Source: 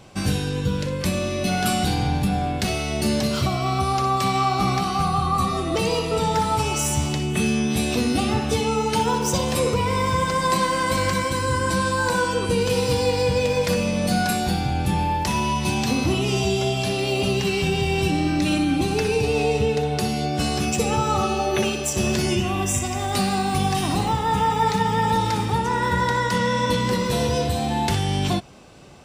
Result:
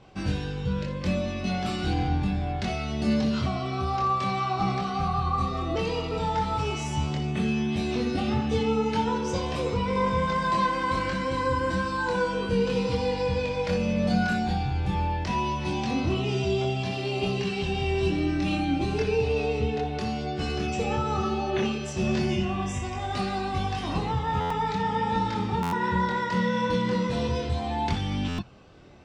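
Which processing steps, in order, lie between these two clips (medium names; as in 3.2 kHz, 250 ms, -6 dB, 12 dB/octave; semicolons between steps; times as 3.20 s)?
16.91–19.02 s: treble shelf 11 kHz +10.5 dB; chorus voices 4, 0.12 Hz, delay 24 ms, depth 2.7 ms; distance through air 140 m; buffer glitch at 24.40/25.62/28.28 s, samples 512, times 8; trim -1.5 dB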